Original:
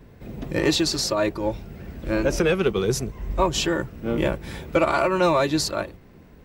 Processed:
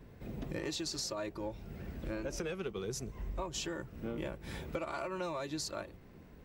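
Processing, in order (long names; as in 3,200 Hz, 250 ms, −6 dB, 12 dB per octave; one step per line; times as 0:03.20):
dynamic equaliser 6,600 Hz, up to +5 dB, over −41 dBFS, Q 1.4
downward compressor 5 to 1, threshold −30 dBFS, peak gain reduction 14 dB
level −6.5 dB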